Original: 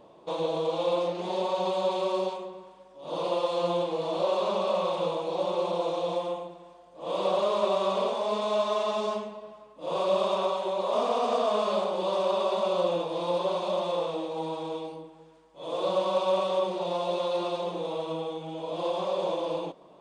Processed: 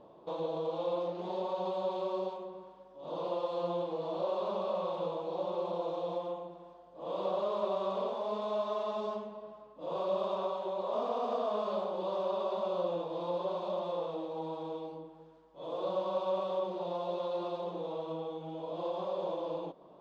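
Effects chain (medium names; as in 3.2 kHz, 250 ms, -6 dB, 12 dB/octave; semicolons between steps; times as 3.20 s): in parallel at 0 dB: compression, threshold -39 dBFS, peak gain reduction 17 dB; on the sum: low-pass 3.6 kHz 12 dB/octave; peaking EQ 2.3 kHz -8 dB 1 oct; trim -8 dB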